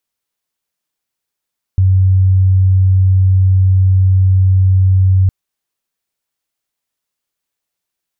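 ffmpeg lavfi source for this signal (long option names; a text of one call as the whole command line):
ffmpeg -f lavfi -i "sine=frequency=94.3:duration=3.51:sample_rate=44100,volume=11.56dB" out.wav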